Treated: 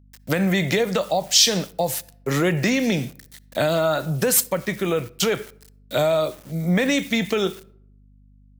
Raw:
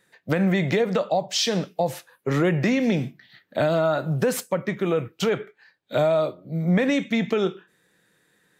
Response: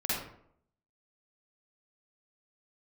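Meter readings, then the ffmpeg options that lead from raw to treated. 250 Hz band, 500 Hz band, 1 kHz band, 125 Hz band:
0.0 dB, +0.5 dB, +1.0 dB, 0.0 dB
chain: -filter_complex "[0:a]aeval=exprs='val(0)*gte(abs(val(0)),0.00501)':c=same,asplit=2[s0][s1];[1:a]atrim=start_sample=2205,adelay=11[s2];[s1][s2]afir=irnorm=-1:irlink=0,volume=0.0316[s3];[s0][s3]amix=inputs=2:normalize=0,aeval=exprs='val(0)+0.00282*(sin(2*PI*50*n/s)+sin(2*PI*2*50*n/s)/2+sin(2*PI*3*50*n/s)/3+sin(2*PI*4*50*n/s)/4+sin(2*PI*5*50*n/s)/5)':c=same,crystalizer=i=3.5:c=0"

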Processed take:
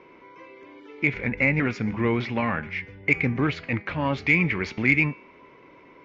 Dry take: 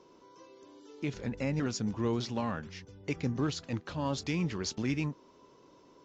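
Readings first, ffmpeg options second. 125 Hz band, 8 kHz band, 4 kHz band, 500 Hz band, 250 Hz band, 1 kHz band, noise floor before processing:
+7.0 dB, no reading, +1.5 dB, +7.0 dB, +7.0 dB, +9.0 dB, -60 dBFS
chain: -af "lowpass=f=2200:t=q:w=8.6,acontrast=79,bandreject=f=205.9:t=h:w=4,bandreject=f=411.8:t=h:w=4,bandreject=f=617.7:t=h:w=4,bandreject=f=823.6:t=h:w=4,bandreject=f=1029.5:t=h:w=4,bandreject=f=1235.4:t=h:w=4,bandreject=f=1441.3:t=h:w=4,bandreject=f=1647.2:t=h:w=4,bandreject=f=1853.1:t=h:w=4,bandreject=f=2059:t=h:w=4,bandreject=f=2264.9:t=h:w=4,bandreject=f=2470.8:t=h:w=4,bandreject=f=2676.7:t=h:w=4,bandreject=f=2882.6:t=h:w=4,bandreject=f=3088.5:t=h:w=4,bandreject=f=3294.4:t=h:w=4,bandreject=f=3500.3:t=h:w=4,bandreject=f=3706.2:t=h:w=4,bandreject=f=3912.1:t=h:w=4,bandreject=f=4118:t=h:w=4,bandreject=f=4323.9:t=h:w=4,bandreject=f=4529.8:t=h:w=4,bandreject=f=4735.7:t=h:w=4,bandreject=f=4941.6:t=h:w=4,bandreject=f=5147.5:t=h:w=4,bandreject=f=5353.4:t=h:w=4,bandreject=f=5559.3:t=h:w=4,bandreject=f=5765.2:t=h:w=4,bandreject=f=5971.1:t=h:w=4,bandreject=f=6177:t=h:w=4,bandreject=f=6382.9:t=h:w=4,bandreject=f=6588.8:t=h:w=4,bandreject=f=6794.7:t=h:w=4"

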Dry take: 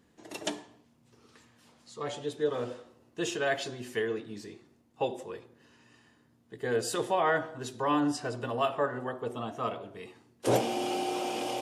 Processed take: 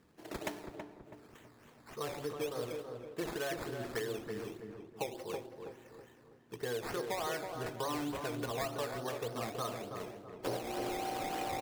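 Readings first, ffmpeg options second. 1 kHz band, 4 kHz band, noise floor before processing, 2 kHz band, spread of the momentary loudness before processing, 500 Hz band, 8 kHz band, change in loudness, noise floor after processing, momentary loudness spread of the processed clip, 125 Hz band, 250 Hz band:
-7.0 dB, -5.5 dB, -66 dBFS, -7.0 dB, 17 LU, -6.5 dB, -5.5 dB, -7.5 dB, -61 dBFS, 15 LU, -4.5 dB, -7.0 dB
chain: -filter_complex "[0:a]equalizer=f=240:t=o:w=0.29:g=-5,acompressor=threshold=0.0178:ratio=6,acrusher=samples=12:mix=1:aa=0.000001:lfo=1:lforange=7.2:lforate=3.4,asplit=2[s0][s1];[s1]adelay=326,lowpass=f=1300:p=1,volume=0.562,asplit=2[s2][s3];[s3]adelay=326,lowpass=f=1300:p=1,volume=0.43,asplit=2[s4][s5];[s5]adelay=326,lowpass=f=1300:p=1,volume=0.43,asplit=2[s6][s7];[s7]adelay=326,lowpass=f=1300:p=1,volume=0.43,asplit=2[s8][s9];[s9]adelay=326,lowpass=f=1300:p=1,volume=0.43[s10];[s2][s4][s6][s8][s10]amix=inputs=5:normalize=0[s11];[s0][s11]amix=inputs=2:normalize=0"

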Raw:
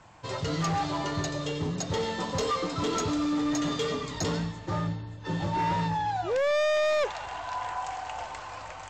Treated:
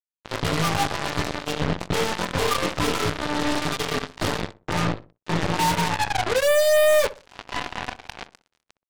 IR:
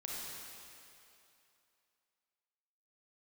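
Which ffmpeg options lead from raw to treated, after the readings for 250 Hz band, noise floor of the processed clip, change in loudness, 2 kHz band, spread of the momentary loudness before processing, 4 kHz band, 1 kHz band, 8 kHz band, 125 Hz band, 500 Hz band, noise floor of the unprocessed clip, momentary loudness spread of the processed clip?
+2.0 dB, under -85 dBFS, +6.0 dB, +8.5 dB, 11 LU, +8.0 dB, +4.0 dB, +6.5 dB, +3.5 dB, +6.5 dB, -42 dBFS, 14 LU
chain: -filter_complex "[0:a]lowpass=f=3900:w=0.5412,lowpass=f=3900:w=1.3066,flanger=delay=18:depth=6.4:speed=0.29,acrusher=bits=4:mix=0:aa=0.5,aeval=exprs='0.0668*(cos(1*acos(clip(val(0)/0.0668,-1,1)))-cos(1*PI/2))+0.0266*(cos(4*acos(clip(val(0)/0.0668,-1,1)))-cos(4*PI/2))+0.00531*(cos(6*acos(clip(val(0)/0.0668,-1,1)))-cos(6*PI/2))':c=same,asplit=2[s0][s1];[s1]adelay=62,lowpass=f=1100:p=1,volume=0.188,asplit=2[s2][s3];[s3]adelay=62,lowpass=f=1100:p=1,volume=0.34,asplit=2[s4][s5];[s5]adelay=62,lowpass=f=1100:p=1,volume=0.34[s6];[s0][s2][s4][s6]amix=inputs=4:normalize=0,volume=2.11"

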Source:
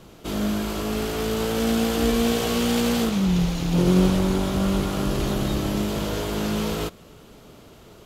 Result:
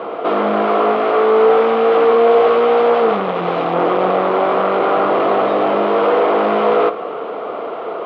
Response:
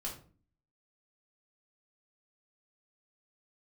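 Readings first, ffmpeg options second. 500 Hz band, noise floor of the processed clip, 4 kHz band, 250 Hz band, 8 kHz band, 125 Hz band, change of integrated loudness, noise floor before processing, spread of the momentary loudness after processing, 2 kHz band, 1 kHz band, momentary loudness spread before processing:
+15.0 dB, -26 dBFS, -1.5 dB, -1.0 dB, under -25 dB, -9.0 dB, +9.0 dB, -48 dBFS, 10 LU, +9.0 dB, +17.5 dB, 7 LU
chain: -filter_complex "[0:a]asplit=2[s0][s1];[s1]highpass=f=720:p=1,volume=35.5,asoftclip=type=tanh:threshold=0.447[s2];[s0][s2]amix=inputs=2:normalize=0,lowpass=f=1400:p=1,volume=0.501,aeval=exprs='clip(val(0),-1,0.0794)':c=same,highpass=300,equalizer=f=480:t=q:w=4:g=10,equalizer=f=720:t=q:w=4:g=8,equalizer=f=1200:t=q:w=4:g=8,equalizer=f=1700:t=q:w=4:g=-5,equalizer=f=2700:t=q:w=4:g=-3,lowpass=f=2800:w=0.5412,lowpass=f=2800:w=1.3066,asplit=2[s3][s4];[1:a]atrim=start_sample=2205[s5];[s4][s5]afir=irnorm=-1:irlink=0,volume=0.398[s6];[s3][s6]amix=inputs=2:normalize=0,volume=0.891"

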